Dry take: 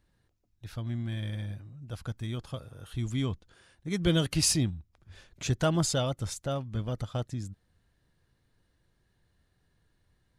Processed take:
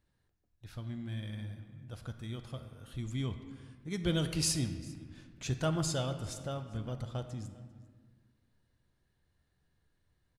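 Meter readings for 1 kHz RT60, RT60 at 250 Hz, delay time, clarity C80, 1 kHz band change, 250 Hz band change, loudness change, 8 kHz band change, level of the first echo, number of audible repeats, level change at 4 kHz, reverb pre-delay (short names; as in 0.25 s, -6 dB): 1.6 s, 2.1 s, 0.397 s, 10.5 dB, -5.5 dB, -5.0 dB, -5.5 dB, -5.5 dB, -23.0 dB, 1, -5.5 dB, 9 ms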